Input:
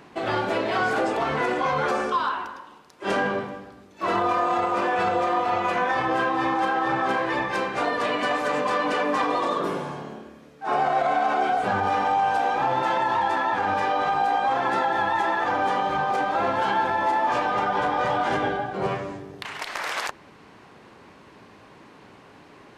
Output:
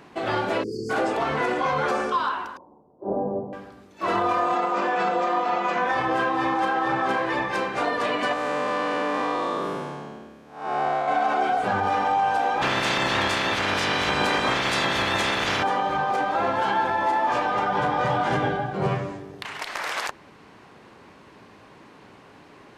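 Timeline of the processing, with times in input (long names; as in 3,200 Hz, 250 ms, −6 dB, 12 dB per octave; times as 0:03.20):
0:00.63–0:00.90: time-frequency box erased 510–4,400 Hz
0:02.57–0:03.53: Butterworth low-pass 810 Hz
0:04.55–0:05.86: Chebyshev band-pass filter 140–7,700 Hz, order 5
0:08.33–0:11.08: spectrum smeared in time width 199 ms
0:12.61–0:15.62: ceiling on every frequency bin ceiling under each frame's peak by 28 dB
0:17.71–0:19.09: parametric band 140 Hz +9.5 dB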